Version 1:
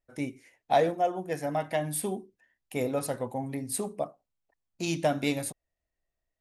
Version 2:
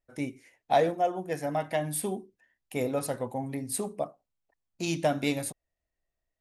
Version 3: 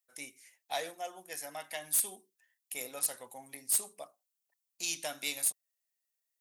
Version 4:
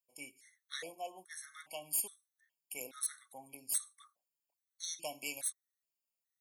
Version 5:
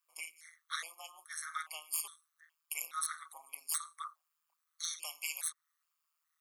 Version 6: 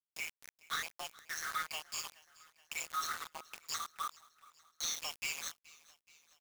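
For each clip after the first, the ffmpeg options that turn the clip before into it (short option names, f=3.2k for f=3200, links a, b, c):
-af anull
-af "acontrast=66,aderivative,aeval=exprs='0.0891*(abs(mod(val(0)/0.0891+3,4)-2)-1)':c=same"
-af "afftfilt=real='re*gt(sin(2*PI*1.2*pts/sr)*(1-2*mod(floor(b*sr/1024/1100),2)),0)':imag='im*gt(sin(2*PI*1.2*pts/sr)*(1-2*mod(floor(b*sr/1024/1100),2)),0)':win_size=1024:overlap=0.75,volume=-2.5dB"
-filter_complex "[0:a]acrossover=split=2700|6500[a][b][c];[a]acompressor=threshold=-55dB:ratio=4[d];[b]acompressor=threshold=-47dB:ratio=4[e];[c]acompressor=threshold=-43dB:ratio=4[f];[d][e][f]amix=inputs=3:normalize=0,tremolo=f=160:d=0.824,highpass=f=1.2k:t=q:w=6.9,volume=9dB"
-af "aresample=16000,asoftclip=type=tanh:threshold=-36.5dB,aresample=44100,acrusher=bits=7:mix=0:aa=0.000001,aecho=1:1:425|850|1275|1700:0.0794|0.0453|0.0258|0.0147,volume=6dB"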